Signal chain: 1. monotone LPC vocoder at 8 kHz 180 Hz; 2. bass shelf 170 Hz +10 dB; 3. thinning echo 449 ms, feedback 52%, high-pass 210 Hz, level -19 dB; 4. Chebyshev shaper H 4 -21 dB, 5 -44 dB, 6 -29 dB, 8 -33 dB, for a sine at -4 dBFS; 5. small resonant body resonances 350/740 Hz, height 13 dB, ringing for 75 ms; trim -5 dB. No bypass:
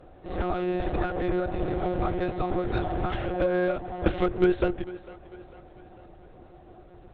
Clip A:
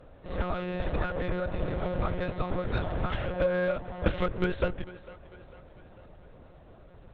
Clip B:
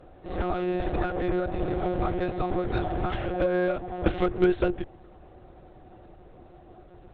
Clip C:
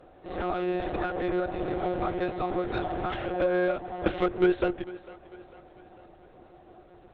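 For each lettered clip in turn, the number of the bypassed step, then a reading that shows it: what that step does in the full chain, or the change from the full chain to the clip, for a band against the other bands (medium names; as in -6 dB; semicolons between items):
5, 250 Hz band -6.0 dB; 3, momentary loudness spread change -8 LU; 2, 125 Hz band -6.0 dB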